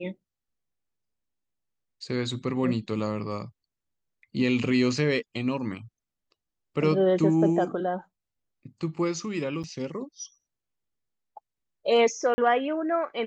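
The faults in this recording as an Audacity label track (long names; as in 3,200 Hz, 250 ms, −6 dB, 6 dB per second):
9.630000	9.640000	drop-out 7.9 ms
12.340000	12.380000	drop-out 40 ms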